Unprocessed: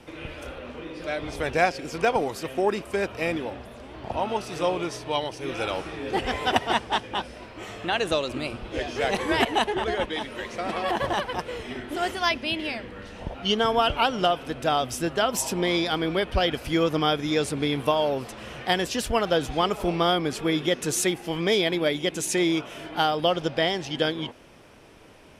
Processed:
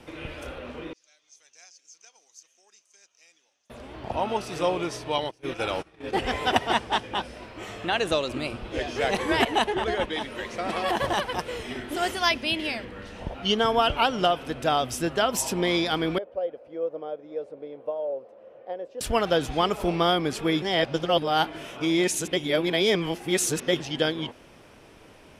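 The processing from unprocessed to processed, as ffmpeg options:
-filter_complex "[0:a]asettb=1/sr,asplit=3[s0][s1][s2];[s0]atrim=end=0.934[s3];[s1]atrim=start=0.93:end=3.7,asetpts=PTS-STARTPTS,afade=t=in:d=0.004:c=qsin,afade=t=out:st=2.766:d=0.004:c=qsin,bandpass=f=6300:t=q:w=11[s4];[s2]atrim=start=3.696[s5];[s3][s4]acrossfade=d=0.004:c1=hsin:c2=qsin[s6];[s6][s5]acrossfade=d=0.004:c1=qsin:c2=hsin,asettb=1/sr,asplit=3[s7][s8][s9];[s7]atrim=end=5.184[s10];[s8]atrim=start=5.18:end=6.15,asetpts=PTS-STARTPTS,afade=t=in:d=0.004:c=qsin,afade=t=out:st=0.966:d=0.004:c=qsin,agate=range=0.0794:threshold=0.0224:ratio=16:release=100:detection=peak[s11];[s9]atrim=start=6.146[s12];[s10][s11]acrossfade=d=0.004:c1=hsin:c2=qsin[s13];[s13][s12]acrossfade=d=0.004:c1=qsin:c2=hsin,asettb=1/sr,asplit=3[s14][s15][s16];[s14]atrim=end=10.704[s17];[s15]atrim=start=10.7:end=12.85,asetpts=PTS-STARTPTS,afade=t=in:d=0.004:c=qsin,afade=t=out:st=2.146:d=0.004:c=qsin,highshelf=f=4700:g=6[s18];[s16]atrim=start=12.846[s19];[s17][s18]acrossfade=d=0.004:c1=hsin:c2=qsin[s20];[s20][s19]acrossfade=d=0.004:c1=qsin:c2=hsin,asettb=1/sr,asplit=3[s21][s22][s23];[s21]atrim=end=16.184[s24];[s22]atrim=start=16.18:end=19.01,asetpts=PTS-STARTPTS,afade=t=in:d=0.004:c=qsin,afade=t=out:st=2.826:d=0.004:c=qsin,bandpass=f=540:t=q:w=6.3[s25];[s23]atrim=start=19.006[s26];[s24][s25]acrossfade=d=0.004:c1=hsin:c2=qsin[s27];[s27][s26]acrossfade=d=0.004:c1=qsin:c2=hsin,asplit=3[s28][s29][s30];[s28]atrim=end=20.622[s31];[s29]atrim=start=20.618:end=23.802,asetpts=PTS-STARTPTS,areverse[s32];[s30]atrim=start=23.798[s33];[s31][s32]acrossfade=d=0.004:c1=hsin:c2=hsin[s34];[s34][s33]acrossfade=d=0.004:c1=hsin:c2=hsin"

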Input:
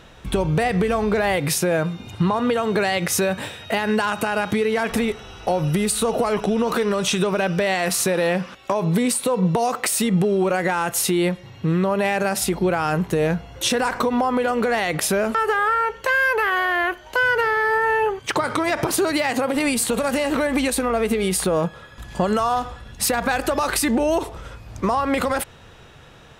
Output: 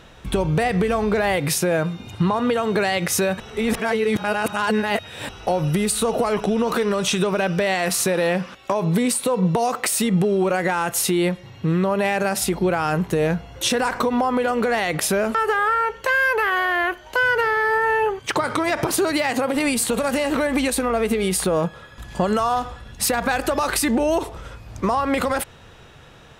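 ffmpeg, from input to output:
-filter_complex "[0:a]asplit=3[s0][s1][s2];[s0]atrim=end=3.402[s3];[s1]atrim=start=3.398:end=5.292,asetpts=PTS-STARTPTS,areverse[s4];[s2]atrim=start=5.288[s5];[s3][s4]acrossfade=d=0.004:c1=hsin:c2=hsin[s6];[s6][s5]acrossfade=d=0.004:c1=hsin:c2=hsin"

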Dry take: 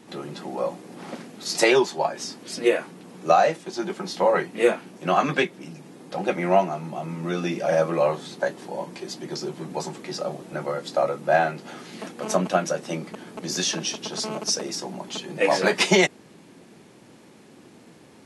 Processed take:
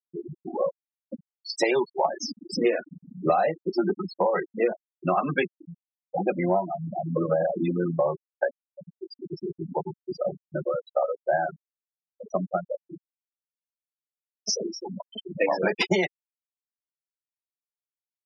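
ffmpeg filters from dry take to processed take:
-filter_complex "[0:a]asettb=1/sr,asplit=3[s0][s1][s2];[s0]atrim=end=2.034[s3];[s1]atrim=start=2.03:end=4,asetpts=PTS-STARTPTS,afade=t=in:d=0.004:c=qsin,afade=t=out:st=1.966:d=0.004:c=qsin,acontrast=59[s4];[s2]atrim=start=3.996[s5];[s3][s4]acrossfade=d=0.004:c1=hsin:c2=qsin[s6];[s6][s5]acrossfade=d=0.004:c1=qsin:c2=hsin,asettb=1/sr,asplit=3[s7][s8][s9];[s7]atrim=end=8.684[s10];[s8]atrim=start=8.68:end=9.5,asetpts=PTS-STARTPTS,afade=t=in:d=0.004:c=qsin,afade=t=out:st=0.816:d=0.004:c=qsin,acrossover=split=370|3000[s11][s12][s13];[s12]acompressor=threshold=0.00562:ratio=3:attack=3.2:release=140:knee=2.83:detection=peak[s14];[s11][s14][s13]amix=inputs=3:normalize=0[s15];[s9]atrim=start=9.496[s16];[s10][s15]acrossfade=d=0.004:c1=hsin:c2=qsin[s17];[s17][s16]acrossfade=d=0.004:c1=qsin:c2=hsin,asplit=4[s18][s19][s20][s21];[s18]atrim=end=7.162[s22];[s19]atrim=start=7.158:end=7.992,asetpts=PTS-STARTPTS,areverse[s23];[s20]atrim=start=7.988:end=14.45,asetpts=PTS-STARTPTS,afade=t=out:st=2.502:d=3.96[s24];[s21]atrim=start=14.45,asetpts=PTS-STARTPTS,afade=t=in:d=0.004:c=hsin[s25];[s22][s23]acrossfade=d=0.004:c1=hsin:c2=hsin[s26];[s24][s25]concat=n=2:v=0:a=1[s27];[s26][s27]acrossfade=d=0.004:c1=hsin:c2=hsin,afftfilt=real='re*gte(hypot(re,im),0.126)':imag='im*gte(hypot(re,im),0.126)':win_size=1024:overlap=0.75,highshelf=f=4600:g=-7,acompressor=threshold=0.0708:ratio=6,volume=1.41"

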